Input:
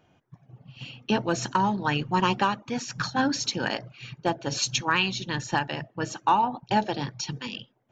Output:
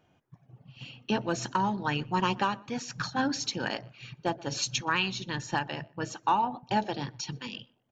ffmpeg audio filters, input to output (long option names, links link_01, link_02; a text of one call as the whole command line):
ffmpeg -i in.wav -filter_complex "[0:a]asplit=2[link_01][link_02];[link_02]adelay=124,lowpass=frequency=2200:poles=1,volume=-24dB,asplit=2[link_03][link_04];[link_04]adelay=124,lowpass=frequency=2200:poles=1,volume=0.25[link_05];[link_01][link_03][link_05]amix=inputs=3:normalize=0,volume=-4dB" out.wav